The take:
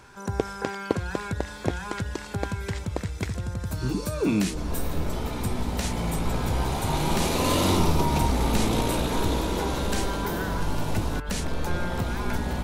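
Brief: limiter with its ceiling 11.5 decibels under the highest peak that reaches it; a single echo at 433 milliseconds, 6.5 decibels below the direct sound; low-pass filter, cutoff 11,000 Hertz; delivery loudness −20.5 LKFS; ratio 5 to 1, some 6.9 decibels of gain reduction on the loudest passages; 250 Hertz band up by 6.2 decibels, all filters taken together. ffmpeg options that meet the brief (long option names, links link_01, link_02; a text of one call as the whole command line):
ffmpeg -i in.wav -af "lowpass=11000,equalizer=frequency=250:width_type=o:gain=8,acompressor=threshold=-24dB:ratio=5,alimiter=limit=-21dB:level=0:latency=1,aecho=1:1:433:0.473,volume=10.5dB" out.wav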